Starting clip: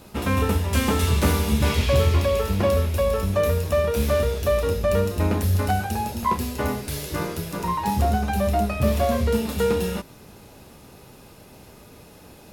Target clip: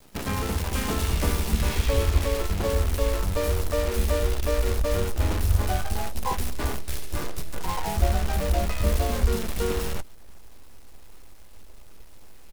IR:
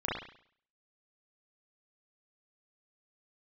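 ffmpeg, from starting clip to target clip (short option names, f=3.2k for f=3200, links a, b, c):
-filter_complex "[0:a]acrusher=bits=5:dc=4:mix=0:aa=0.000001,asplit=3[a][b][c];[b]asetrate=22050,aresample=44100,atempo=2,volume=-9dB[d];[c]asetrate=35002,aresample=44100,atempo=1.25992,volume=-4dB[e];[a][d][e]amix=inputs=3:normalize=0,asubboost=boost=7.5:cutoff=50,volume=-7.5dB"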